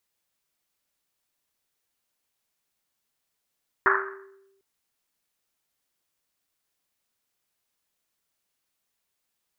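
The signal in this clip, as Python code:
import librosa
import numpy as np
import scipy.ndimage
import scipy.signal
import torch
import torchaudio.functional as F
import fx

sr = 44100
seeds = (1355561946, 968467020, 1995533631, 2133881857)

y = fx.risset_drum(sr, seeds[0], length_s=0.75, hz=390.0, decay_s=1.09, noise_hz=1400.0, noise_width_hz=770.0, noise_pct=70)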